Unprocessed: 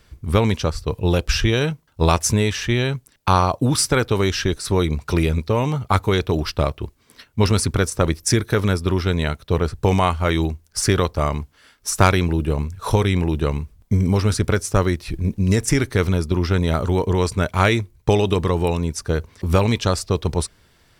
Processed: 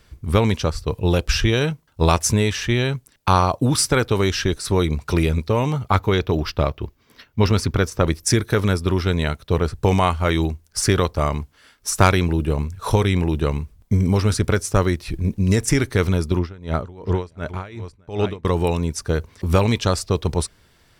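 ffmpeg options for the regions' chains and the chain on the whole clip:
-filter_complex "[0:a]asettb=1/sr,asplit=3[a][b][c];[a]atrim=end=5.904[d];[b]atrim=start=5.9:end=8.07,asetpts=PTS-STARTPTS,afade=t=in:d=0.004:c=qsin,afade=t=out:st=2.166:d=0.004:c=qsin,equalizer=f=9.1k:t=o:w=0.7:g=-12,bandreject=f=4.1k:w=24[e];[c]atrim=start=8.066[f];[d][e]acrossfade=d=0.004:c1=hsin:c2=qsin[g];[g][f]acrossfade=d=0.004:c1=qsin:c2=hsin,asettb=1/sr,asplit=3[h][i][j];[h]atrim=end=16.394[k];[i]atrim=start=16.39:end=18.45,asetpts=PTS-STARTPTS,afade=t=in:d=0.004:c=qsin,afade=t=out:st=2.056:d=0.004:c=qsin,lowpass=f=2.8k:p=1,aecho=1:1:616:0.168,atrim=end_sample=90846,aeval=exprs='val(0)*pow(10,-23*(0.5-0.5*cos(2*PI*2.7*n/s))/20)':c=same[l];[j]atrim=start=18.446[m];[k][l]acrossfade=d=0.004:c1=hsin:c2=qsin[n];[n][m]acrossfade=d=0.004:c1=qsin:c2=hsin"

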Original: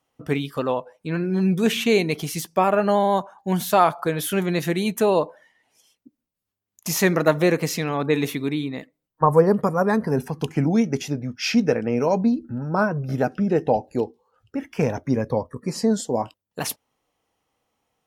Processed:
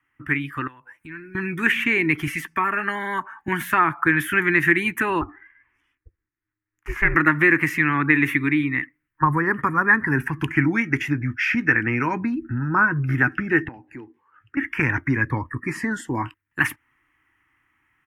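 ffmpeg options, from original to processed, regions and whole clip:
-filter_complex "[0:a]asettb=1/sr,asplit=3[a][b][c];[a]atrim=end=0.674[d];[b]atrim=start=0.67:end=1.35,asetpts=PTS-STARTPTS,afade=t=in:d=0.004:c=qsin,afade=t=out:st=0.676:d=0.004:c=qsin,bass=f=250:g=0,treble=f=4k:g=11,acompressor=threshold=-38dB:ratio=8:attack=3.2:release=140:knee=1:detection=peak[e];[c]atrim=start=1.346[f];[d][e]acrossfade=d=0.004:c1=hsin:c2=qsin[g];[g][f]acrossfade=d=0.004:c1=qsin:c2=hsin,asettb=1/sr,asplit=3[h][i][j];[h]atrim=end=2.274[k];[i]atrim=start=2.27:end=3.48,asetpts=PTS-STARTPTS,afade=t=in:d=0.004:c=qsin,afade=t=out:st=1.206:d=0.004:c=qsin,aecho=1:1:4.5:0.57,atrim=end_sample=53361,acrossover=split=340|950|6700[l][m][n][o];[l]acompressor=threshold=-37dB:ratio=3[p];[m]acompressor=threshold=-25dB:ratio=3[q];[n]acompressor=threshold=-34dB:ratio=3[r];[o]acompressor=threshold=-39dB:ratio=3[s];[p][q][r][s]amix=inputs=4:normalize=0[t];[j]atrim=start=3.476[u];[k][t]acrossfade=d=0.004:c1=hsin:c2=qsin[v];[v][u]acrossfade=d=0.004:c1=qsin:c2=hsin,asettb=1/sr,asplit=3[w][x][y];[w]atrim=end=5.214[z];[x]atrim=start=5.21:end=7.15,asetpts=PTS-STARTPTS,afade=t=in:d=0.004:c=qsin,afade=t=out:st=1.936:d=0.004:c=qsin,lowpass=f=1k:p=1,aeval=exprs='val(0)*sin(2*PI*210*n/s)':c=same[aa];[y]atrim=start=7.146[ab];[z][aa]acrossfade=d=0.004:c1=hsin:c2=qsin[ac];[ac][ab]acrossfade=d=0.004:c1=qsin:c2=hsin,asettb=1/sr,asplit=3[ad][ae][af];[ad]atrim=end=13.684[ag];[ae]atrim=start=13.68:end=14.57,asetpts=PTS-STARTPTS,afade=t=in:d=0.004:c=qsin,afade=t=out:st=0.886:d=0.004:c=qsin,highpass=140,highshelf=f=6.3k:g=-9.5,acompressor=threshold=-47dB:ratio=2:attack=3.2:release=140:knee=1:detection=peak[ah];[af]atrim=start=14.566[ai];[ag][ah]acrossfade=d=0.004:c1=hsin:c2=qsin[aj];[aj][ai]acrossfade=d=0.004:c1=qsin:c2=hsin,acrossover=split=380|910[ak][al][am];[ak]acompressor=threshold=-25dB:ratio=4[an];[al]acompressor=threshold=-20dB:ratio=4[ao];[am]acompressor=threshold=-30dB:ratio=4[ap];[an][ao][ap]amix=inputs=3:normalize=0,firequalizer=gain_entry='entry(130,0);entry(190,-12);entry(320,2);entry(460,-22);entry(650,-22);entry(940,-3);entry(1800,14);entry(4000,-20);entry(9500,-10)':delay=0.05:min_phase=1,dynaudnorm=f=820:g=3:m=5.5dB,volume=2dB"

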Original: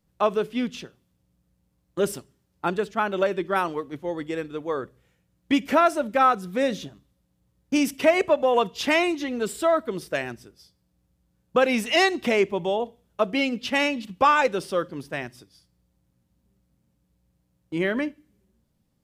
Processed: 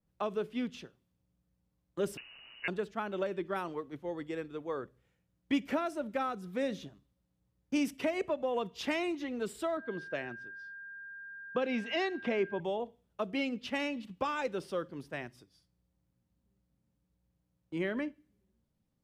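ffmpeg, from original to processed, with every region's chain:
-filter_complex "[0:a]asettb=1/sr,asplit=3[a][b][c];[a]atrim=end=2.174[d];[b]atrim=start=2.17:end=2.68,asetpts=PTS-STARTPTS,afade=t=in:d=0.004:c=qsin,afade=t=out:st=0.506:d=0.004:c=qsin,aeval=exprs='val(0)+0.5*0.0126*sgn(val(0))':c=same,lowpass=f=2.6k:t=q:w=0.5098,lowpass=f=2.6k:t=q:w=0.6013,lowpass=f=2.6k:t=q:w=0.9,lowpass=f=2.6k:t=q:w=2.563,afreqshift=-3000,lowshelf=f=190:g=8.5[e];[c]atrim=start=2.676[f];[d][e]acrossfade=d=0.004:c1=hsin:c2=qsin[g];[g][f]acrossfade=d=0.004:c1=qsin:c2=hsin,asettb=1/sr,asplit=3[h][i][j];[h]atrim=end=9.774[k];[i]atrim=start=9.77:end=12.6,asetpts=PTS-STARTPTS,afade=t=in:d=0.004:c=qsin,afade=t=out:st=2.826:d=0.004:c=qsin,highpass=110,lowpass=4.2k,aeval=exprs='val(0)+0.0178*sin(2*PI*1600*n/s)':c=same[l];[j]atrim=start=12.596[m];[k][l]acrossfade=d=0.004:c1=hsin:c2=qsin[n];[n][m]acrossfade=d=0.004:c1=qsin:c2=hsin,highshelf=f=4.7k:g=-5,acrossover=split=420|3000[o][p][q];[p]acompressor=threshold=-25dB:ratio=6[r];[o][r][q]amix=inputs=3:normalize=0,adynamicequalizer=threshold=0.0112:dfrequency=3000:dqfactor=0.7:tfrequency=3000:tqfactor=0.7:attack=5:release=100:ratio=0.375:range=2.5:mode=cutabove:tftype=highshelf,volume=-8.5dB"

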